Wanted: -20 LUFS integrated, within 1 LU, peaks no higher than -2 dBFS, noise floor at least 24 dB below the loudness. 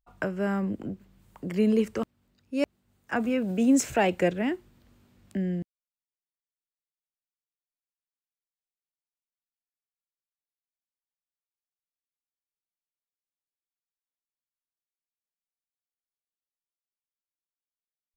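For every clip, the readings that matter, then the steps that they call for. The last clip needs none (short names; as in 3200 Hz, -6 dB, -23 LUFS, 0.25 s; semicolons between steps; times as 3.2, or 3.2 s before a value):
loudness -28.0 LUFS; peak -12.5 dBFS; loudness target -20.0 LUFS
-> gain +8 dB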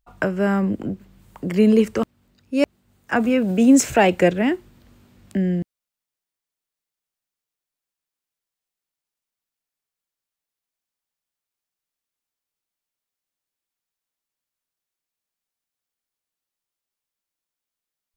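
loudness -20.0 LUFS; peak -4.5 dBFS; noise floor -88 dBFS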